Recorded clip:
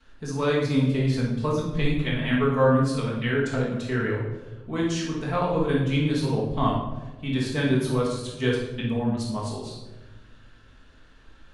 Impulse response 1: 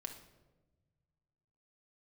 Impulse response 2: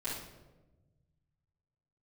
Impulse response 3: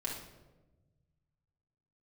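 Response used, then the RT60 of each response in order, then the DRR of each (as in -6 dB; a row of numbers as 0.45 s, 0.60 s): 2; 1.2 s, 1.2 s, 1.2 s; 4.0 dB, -13.0 dB, -3.5 dB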